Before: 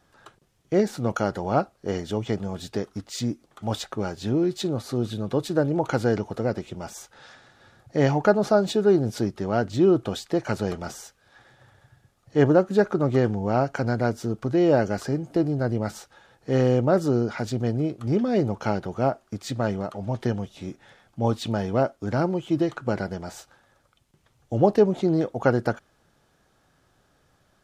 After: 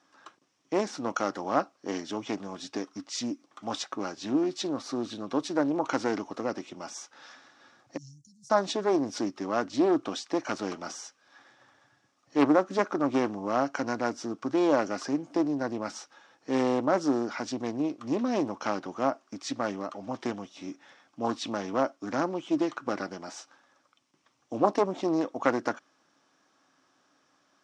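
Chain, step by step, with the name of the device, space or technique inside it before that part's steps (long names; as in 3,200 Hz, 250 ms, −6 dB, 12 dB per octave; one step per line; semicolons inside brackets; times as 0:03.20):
0:07.97–0:08.50: inverse Chebyshev band-stop filter 410–2,200 Hz, stop band 70 dB
parametric band 2,400 Hz +3.5 dB 0.96 octaves
full-range speaker at full volume (highs frequency-modulated by the lows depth 0.38 ms; loudspeaker in its box 280–8,300 Hz, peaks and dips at 280 Hz +10 dB, 430 Hz −5 dB, 1,100 Hz +7 dB, 5,600 Hz +9 dB)
level −4.5 dB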